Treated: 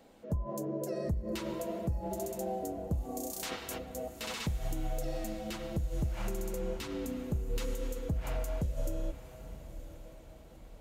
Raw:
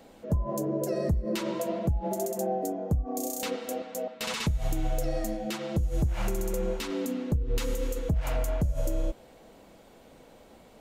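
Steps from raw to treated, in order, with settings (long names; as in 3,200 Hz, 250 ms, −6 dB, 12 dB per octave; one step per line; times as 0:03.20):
0:03.31–0:03.77: ceiling on every frequency bin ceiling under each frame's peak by 21 dB
feedback delay with all-pass diffusion 965 ms, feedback 43%, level −13.5 dB
level −6.5 dB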